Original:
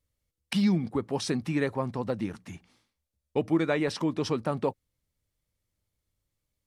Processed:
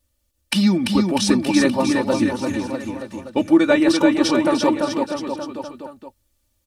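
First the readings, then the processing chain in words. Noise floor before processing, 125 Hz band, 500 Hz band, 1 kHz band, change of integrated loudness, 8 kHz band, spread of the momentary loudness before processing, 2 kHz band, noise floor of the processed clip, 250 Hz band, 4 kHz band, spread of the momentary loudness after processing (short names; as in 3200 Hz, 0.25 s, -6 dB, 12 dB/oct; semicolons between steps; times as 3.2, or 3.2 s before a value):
-84 dBFS, +4.0 dB, +10.0 dB, +11.5 dB, +10.5 dB, +14.5 dB, 8 LU, +12.0 dB, -69 dBFS, +12.5 dB, +13.5 dB, 15 LU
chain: high shelf 4800 Hz +4.5 dB; notch 2100 Hz, Q 14; comb 3.4 ms, depth 84%; bouncing-ball echo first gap 0.34 s, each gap 0.9×, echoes 5; gain +7 dB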